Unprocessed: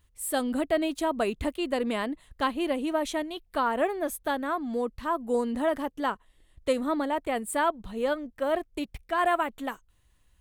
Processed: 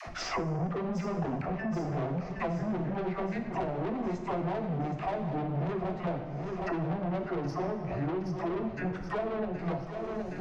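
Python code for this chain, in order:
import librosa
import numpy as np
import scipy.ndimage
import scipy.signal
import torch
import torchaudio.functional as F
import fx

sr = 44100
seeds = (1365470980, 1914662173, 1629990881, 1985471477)

p1 = fx.pitch_heads(x, sr, semitones=-8.0)
p2 = np.clip(10.0 ** (27.5 / 20.0) * p1, -1.0, 1.0) / 10.0 ** (27.5 / 20.0)
p3 = p1 + (p2 * librosa.db_to_amplitude(-7.5))
p4 = scipy.signal.sosfilt(scipy.signal.butter(2, 5200.0, 'lowpass', fs=sr, output='sos'), p3)
p5 = fx.env_lowpass_down(p4, sr, base_hz=390.0, full_db=-21.5)
p6 = fx.peak_eq(p5, sr, hz=110.0, db=5.5, octaves=0.79)
p7 = fx.dispersion(p6, sr, late='lows', ms=74.0, hz=440.0)
p8 = 10.0 ** (-32.5 / 20.0) * np.tanh(p7 / 10.0 ** (-32.5 / 20.0))
p9 = fx.peak_eq(p8, sr, hz=700.0, db=8.5, octaves=0.32)
p10 = p9 + fx.echo_feedback(p9, sr, ms=769, feedback_pct=53, wet_db=-12.0, dry=0)
p11 = fx.rev_plate(p10, sr, seeds[0], rt60_s=0.78, hf_ratio=0.95, predelay_ms=0, drr_db=4.0)
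y = fx.band_squash(p11, sr, depth_pct=100)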